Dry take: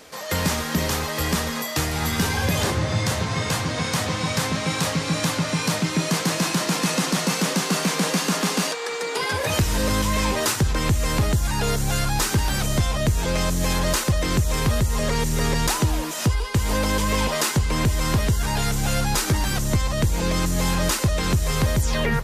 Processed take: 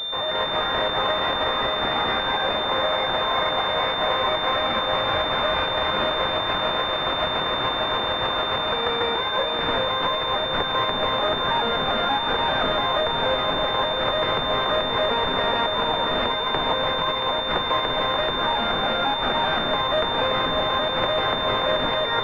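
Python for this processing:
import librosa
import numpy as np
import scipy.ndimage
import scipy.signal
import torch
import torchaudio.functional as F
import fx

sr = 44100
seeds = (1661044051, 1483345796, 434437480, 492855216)

y = scipy.signal.sosfilt(scipy.signal.butter(4, 530.0, 'highpass', fs=sr, output='sos'), x)
y = fx.over_compress(y, sr, threshold_db=-28.0, ratio=-0.5)
y = fx.echo_feedback(y, sr, ms=677, feedback_pct=58, wet_db=-6.5)
y = fx.pwm(y, sr, carrier_hz=3600.0)
y = y * 10.0 ** (6.5 / 20.0)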